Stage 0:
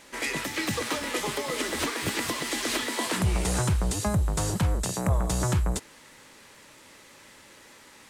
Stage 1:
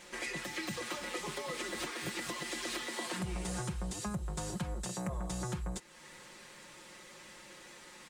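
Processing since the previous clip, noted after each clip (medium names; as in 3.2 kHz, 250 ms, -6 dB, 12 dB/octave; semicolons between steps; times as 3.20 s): peaking EQ 12 kHz -11 dB 0.2 oct; comb 5.6 ms, depth 73%; compression 2:1, threshold -40 dBFS, peak gain reduction 12 dB; trim -3 dB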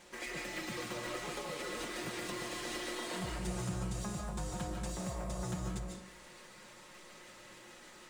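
feedback comb 120 Hz, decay 1.3 s, harmonics all, mix 70%; in parallel at -8.5 dB: decimation with a swept rate 10×, swing 160% 3.4 Hz; on the sum: reverberation RT60 0.65 s, pre-delay 105 ms, DRR 0 dB; trim +3.5 dB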